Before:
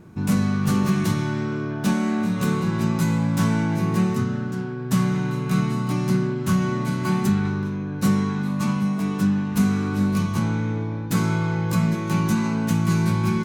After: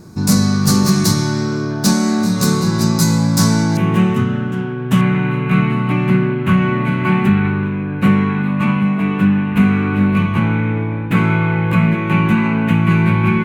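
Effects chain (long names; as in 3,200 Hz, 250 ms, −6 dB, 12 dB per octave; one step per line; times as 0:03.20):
high shelf with overshoot 3,700 Hz +7 dB, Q 3, from 0:03.77 −6.5 dB, from 0:05.01 −14 dB
level +7 dB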